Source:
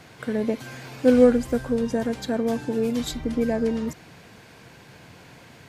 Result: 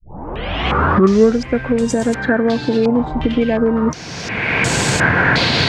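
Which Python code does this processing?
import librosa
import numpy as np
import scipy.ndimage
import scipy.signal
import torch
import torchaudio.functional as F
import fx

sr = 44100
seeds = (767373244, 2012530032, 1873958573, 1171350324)

y = fx.tape_start_head(x, sr, length_s=1.38)
y = fx.recorder_agc(y, sr, target_db=-11.0, rise_db_per_s=25.0, max_gain_db=30)
y = fx.filter_held_lowpass(y, sr, hz=2.8, low_hz=900.0, high_hz=7800.0)
y = y * librosa.db_to_amplitude(3.5)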